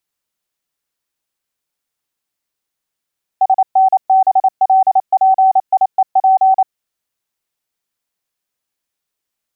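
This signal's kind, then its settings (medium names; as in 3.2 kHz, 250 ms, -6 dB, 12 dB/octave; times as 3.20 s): Morse "SNBLPIEP" 28 wpm 763 Hz -6.5 dBFS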